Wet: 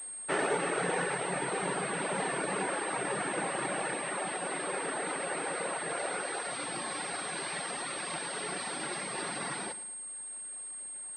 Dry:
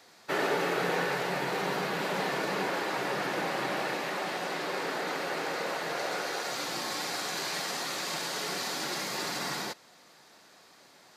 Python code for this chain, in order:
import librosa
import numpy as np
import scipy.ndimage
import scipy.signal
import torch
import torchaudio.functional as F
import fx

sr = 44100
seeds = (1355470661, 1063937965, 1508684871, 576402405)

p1 = fx.dereverb_blind(x, sr, rt60_s=0.81)
p2 = p1 + fx.echo_feedback(p1, sr, ms=110, feedback_pct=54, wet_db=-15, dry=0)
y = fx.pwm(p2, sr, carrier_hz=8500.0)